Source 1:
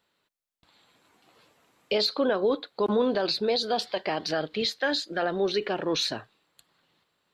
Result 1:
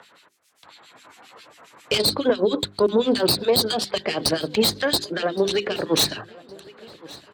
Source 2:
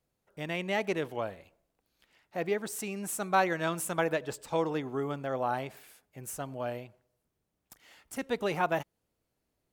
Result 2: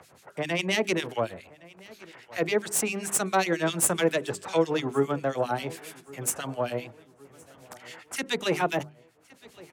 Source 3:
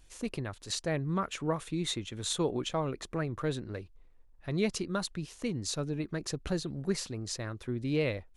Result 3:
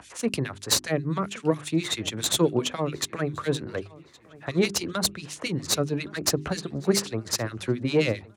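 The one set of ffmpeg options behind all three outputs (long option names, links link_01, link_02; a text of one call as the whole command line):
ffmpeg -i in.wav -filter_complex "[0:a]lowpass=7500,acrossover=split=1800[link_01][link_02];[link_01]aeval=exprs='val(0)*(1-1/2+1/2*cos(2*PI*7.4*n/s))':channel_layout=same[link_03];[link_02]aeval=exprs='val(0)*(1-1/2-1/2*cos(2*PI*7.4*n/s))':channel_layout=same[link_04];[link_03][link_04]amix=inputs=2:normalize=0,tiltshelf=frequency=680:gain=-9,acrossover=split=210|450|2600[link_05][link_06][link_07][link_08];[link_07]acompressor=threshold=-47dB:ratio=6[link_09];[link_05][link_06][link_09][link_08]amix=inputs=4:normalize=0,aeval=exprs='(tanh(12.6*val(0)+0.65)-tanh(0.65))/12.6':channel_layout=same,acompressor=mode=upward:threshold=-58dB:ratio=2.5,highpass=frequency=77:width=0.5412,highpass=frequency=77:width=1.3066,equalizer=frequency=4000:width_type=o:width=2.8:gain=-10.5,bandreject=frequency=50:width_type=h:width=6,bandreject=frequency=100:width_type=h:width=6,bandreject=frequency=150:width_type=h:width=6,bandreject=frequency=200:width_type=h:width=6,bandreject=frequency=250:width_type=h:width=6,bandreject=frequency=300:width_type=h:width=6,bandreject=frequency=350:width_type=h:width=6,bandreject=frequency=400:width_type=h:width=6,asplit=2[link_10][link_11];[link_11]adelay=1116,lowpass=frequency=4400:poles=1,volume=-22dB,asplit=2[link_12][link_13];[link_13]adelay=1116,lowpass=frequency=4400:poles=1,volume=0.52,asplit=2[link_14][link_15];[link_15]adelay=1116,lowpass=frequency=4400:poles=1,volume=0.52,asplit=2[link_16][link_17];[link_17]adelay=1116,lowpass=frequency=4400:poles=1,volume=0.52[link_18];[link_10][link_12][link_14][link_16][link_18]amix=inputs=5:normalize=0,alimiter=level_in=29dB:limit=-1dB:release=50:level=0:latency=1,volume=-7.5dB" out.wav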